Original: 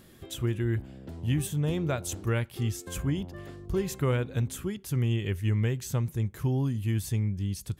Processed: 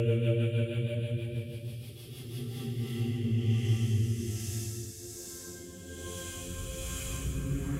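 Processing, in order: time-frequency box 1.95–2.54 s, 650–2300 Hz -17 dB; Paulstretch 11×, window 0.25 s, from 2.33 s; rotary cabinet horn 6.3 Hz, later 1.2 Hz, at 2.11 s

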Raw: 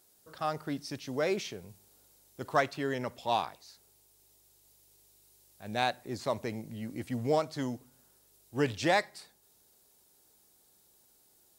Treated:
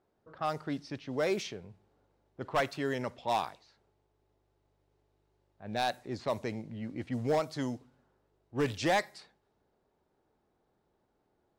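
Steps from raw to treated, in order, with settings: level-controlled noise filter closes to 1.3 kHz, open at -27 dBFS; hard clipper -22.5 dBFS, distortion -14 dB

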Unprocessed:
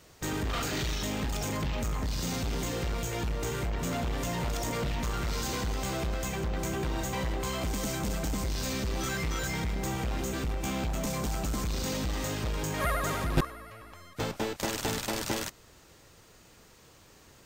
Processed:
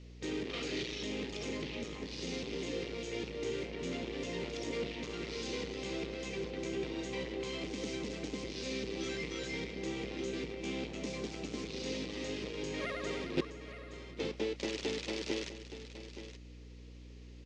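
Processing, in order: high-pass 390 Hz 12 dB/octave; high-order bell 1 kHz -15.5 dB; hum 60 Hz, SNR 15 dB; low-pass 5.8 kHz 24 dB/octave; treble shelf 2.1 kHz -10 dB; on a send: delay 870 ms -12 dB; on the sum: trim +3.5 dB

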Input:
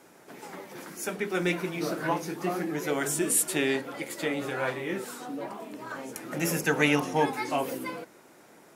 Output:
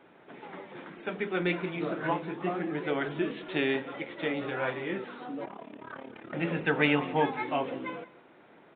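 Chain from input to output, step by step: 5.45–6.33 s: AM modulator 35 Hz, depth 75%; on a send: delay 187 ms -20 dB; on the sum: resampled via 8 kHz; trim -1.5 dB

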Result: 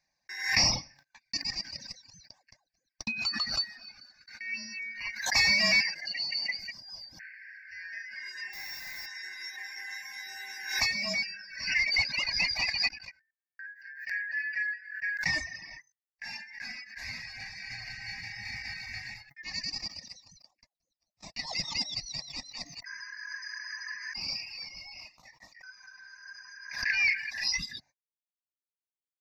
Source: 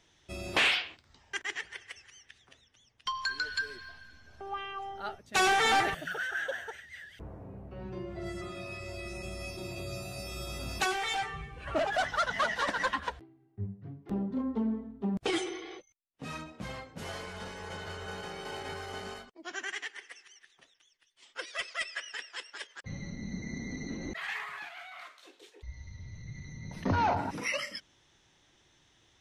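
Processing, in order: four frequency bands reordered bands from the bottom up 3142; de-hum 139.4 Hz, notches 15; reverb removal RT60 0.59 s; 5.82–6.59 s: three-band isolator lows -23 dB, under 190 Hz, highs -22 dB, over 7.6 kHz; 8.53–9.06 s: word length cut 8-bit, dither triangular; static phaser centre 2.1 kHz, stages 8; 12.88–13.65 s: level held to a coarse grid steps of 23 dB; gate -59 dBFS, range -54 dB; swell ahead of each attack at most 84 dB/s; trim +3 dB

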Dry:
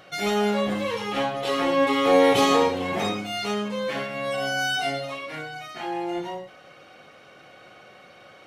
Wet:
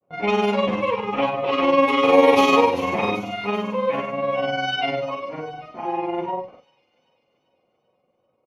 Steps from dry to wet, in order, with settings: level-controlled noise filter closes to 550 Hz, open at -16.5 dBFS; gate with hold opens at -41 dBFS; graphic EQ with 31 bands 250 Hz +4 dB, 500 Hz +6 dB, 1 kHz +11 dB, 1.6 kHz -7 dB, 2.5 kHz +10 dB, 4 kHz -3 dB, 8 kHz -11 dB; in parallel at -3 dB: compression, threshold -26 dBFS, peak gain reduction 15.5 dB; on the sum: granulator 86 ms, grains 20 per s, spray 23 ms, pitch spread up and down by 0 st; doubling 36 ms -13.5 dB; on a send: feedback echo behind a high-pass 390 ms, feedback 56%, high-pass 5.2 kHz, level -10 dB

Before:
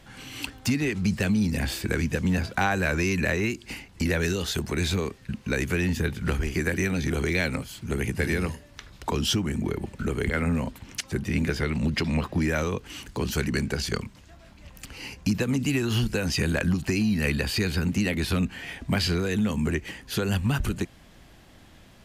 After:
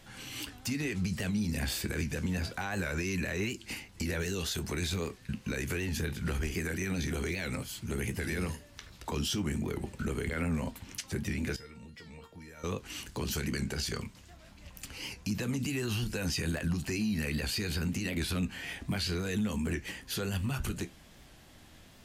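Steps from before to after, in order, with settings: treble shelf 3.8 kHz +6 dB; peak limiter -20.5 dBFS, peak gain reduction 10 dB; flange 0.26 Hz, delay 9 ms, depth 5.1 ms, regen -60%; 11.56–12.64 s: feedback comb 460 Hz, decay 0.33 s, harmonics all, mix 90%; warped record 78 rpm, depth 100 cents

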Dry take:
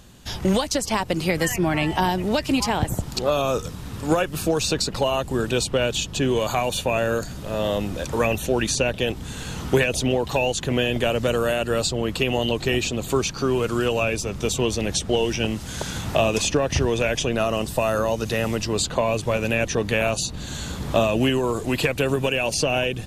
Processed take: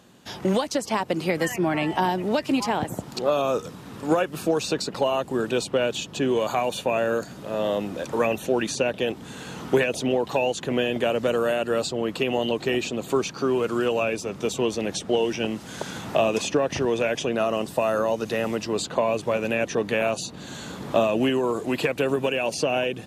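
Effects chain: high-pass 200 Hz 12 dB/octave; treble shelf 2.6 kHz -8 dB

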